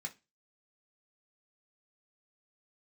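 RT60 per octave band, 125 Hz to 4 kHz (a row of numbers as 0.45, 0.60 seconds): 0.30, 0.30, 0.25, 0.25, 0.25, 0.25 seconds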